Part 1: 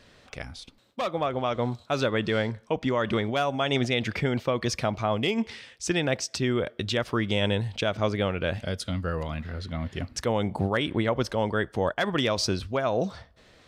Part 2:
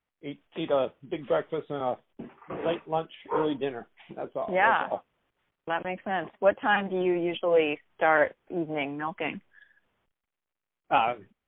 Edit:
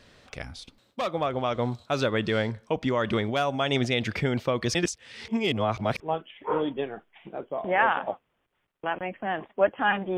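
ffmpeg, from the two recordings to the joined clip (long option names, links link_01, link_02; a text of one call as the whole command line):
ffmpeg -i cue0.wav -i cue1.wav -filter_complex "[0:a]apad=whole_dur=10.17,atrim=end=10.17,asplit=2[link_01][link_02];[link_01]atrim=end=4.752[link_03];[link_02]atrim=start=4.748:end=6.002,asetpts=PTS-STARTPTS,areverse[link_04];[1:a]atrim=start=2.838:end=7.01[link_05];[link_03][link_04]acrossfade=duration=0.004:curve1=hsin:curve2=hsin[link_06];[link_06][link_05]acrossfade=duration=0.004:curve1=hsin:curve2=hsin" out.wav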